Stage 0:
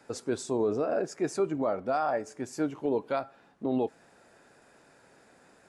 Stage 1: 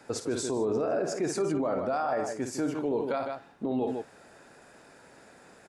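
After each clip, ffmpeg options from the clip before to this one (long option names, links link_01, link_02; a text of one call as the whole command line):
ffmpeg -i in.wav -af "aecho=1:1:55.39|154.5:0.316|0.282,alimiter=level_in=1.5dB:limit=-24dB:level=0:latency=1:release=29,volume=-1.5dB,volume=4.5dB" out.wav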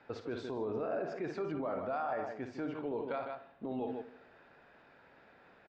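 ffmpeg -i in.wav -filter_complex "[0:a]lowpass=frequency=3500:width=0.5412,lowpass=frequency=3500:width=1.3066,equalizer=frequency=260:width_type=o:width=2.5:gain=-4.5,asplit=2[link_01][link_02];[link_02]adelay=75,lowpass=frequency=1600:poles=1,volume=-13.5dB,asplit=2[link_03][link_04];[link_04]adelay=75,lowpass=frequency=1600:poles=1,volume=0.54,asplit=2[link_05][link_06];[link_06]adelay=75,lowpass=frequency=1600:poles=1,volume=0.54,asplit=2[link_07][link_08];[link_08]adelay=75,lowpass=frequency=1600:poles=1,volume=0.54,asplit=2[link_09][link_10];[link_10]adelay=75,lowpass=frequency=1600:poles=1,volume=0.54[link_11];[link_01][link_03][link_05][link_07][link_09][link_11]amix=inputs=6:normalize=0,volume=-5dB" out.wav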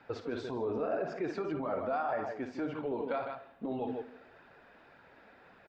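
ffmpeg -i in.wav -af "flanger=delay=0.6:depth=3.9:regen=-40:speed=1.8:shape=triangular,volume=6.5dB" out.wav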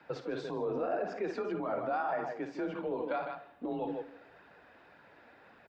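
ffmpeg -i in.wav -af "afreqshift=31" out.wav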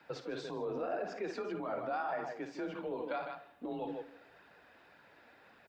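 ffmpeg -i in.wav -af "highshelf=frequency=3000:gain=8.5,volume=-4dB" out.wav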